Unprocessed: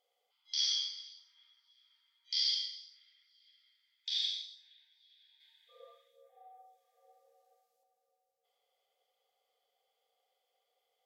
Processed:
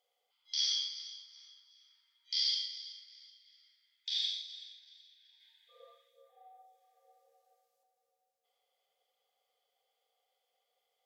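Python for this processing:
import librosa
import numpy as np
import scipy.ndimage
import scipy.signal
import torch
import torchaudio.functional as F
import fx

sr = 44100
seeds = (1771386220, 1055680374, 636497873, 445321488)

p1 = fx.low_shelf(x, sr, hz=410.0, db=-5.5)
y = p1 + fx.echo_feedback(p1, sr, ms=378, feedback_pct=31, wet_db=-16, dry=0)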